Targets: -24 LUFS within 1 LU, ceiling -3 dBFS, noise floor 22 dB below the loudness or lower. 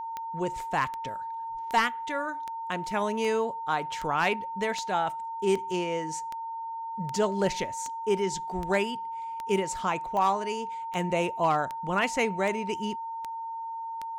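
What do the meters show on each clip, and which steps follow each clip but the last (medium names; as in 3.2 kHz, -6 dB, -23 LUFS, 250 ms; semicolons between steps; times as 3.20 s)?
clicks found 19; steady tone 910 Hz; tone level -33 dBFS; loudness -29.5 LUFS; peak level -14.5 dBFS; loudness target -24.0 LUFS
-> de-click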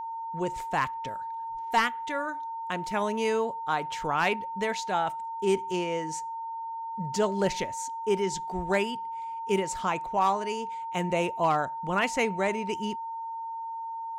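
clicks found 0; steady tone 910 Hz; tone level -33 dBFS
-> band-stop 910 Hz, Q 30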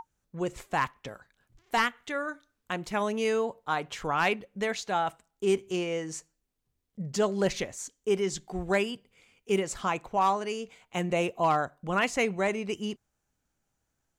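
steady tone not found; loudness -30.0 LUFS; peak level -12.5 dBFS; loudness target -24.0 LUFS
-> trim +6 dB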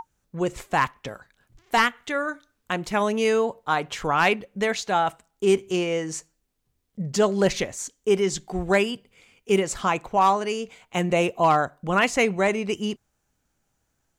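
loudness -24.0 LUFS; peak level -6.5 dBFS; noise floor -75 dBFS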